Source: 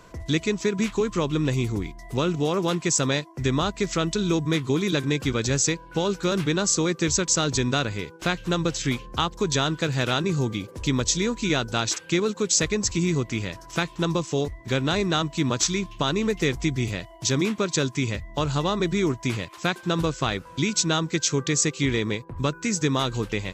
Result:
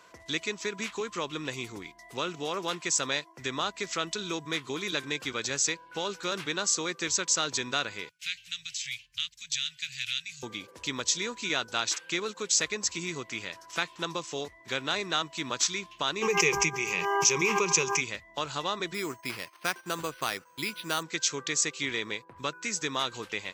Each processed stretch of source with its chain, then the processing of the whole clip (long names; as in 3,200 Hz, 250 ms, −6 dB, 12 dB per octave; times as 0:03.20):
0:08.09–0:10.43: elliptic band-stop filter 110–2,300 Hz, stop band 50 dB + low-shelf EQ 140 Hz −4 dB
0:16.21–0:18.00: EQ curve with evenly spaced ripples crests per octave 0.77, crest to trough 17 dB + hum with harmonics 400 Hz, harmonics 4, −37 dBFS −6 dB per octave + background raised ahead of every attack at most 24 dB per second
0:18.94–0:21.03: noise gate −43 dBFS, range −9 dB + bad sample-rate conversion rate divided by 6×, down filtered, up hold
whole clip: high-pass filter 1,300 Hz 6 dB per octave; high-shelf EQ 5,500 Hz −6 dB